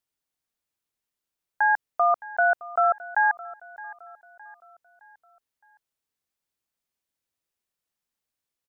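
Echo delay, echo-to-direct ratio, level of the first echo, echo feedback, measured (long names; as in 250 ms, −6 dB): 615 ms, −17.5 dB, −18.5 dB, 44%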